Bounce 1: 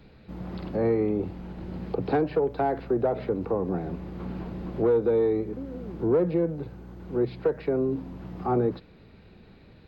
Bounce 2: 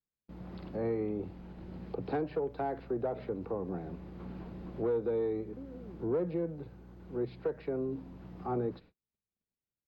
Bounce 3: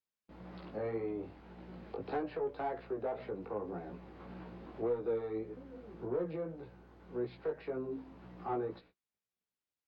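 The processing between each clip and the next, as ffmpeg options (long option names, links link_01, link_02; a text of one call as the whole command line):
ffmpeg -i in.wav -af "agate=range=-40dB:threshold=-45dB:ratio=16:detection=peak,volume=-9dB" out.wav
ffmpeg -i in.wav -filter_complex "[0:a]asplit=2[link_01][link_02];[link_02]highpass=frequency=720:poles=1,volume=11dB,asoftclip=type=tanh:threshold=-23dB[link_03];[link_01][link_03]amix=inputs=2:normalize=0,lowpass=frequency=3400:poles=1,volume=-6dB,flanger=delay=16:depth=3.3:speed=1.8,volume=-1dB" out.wav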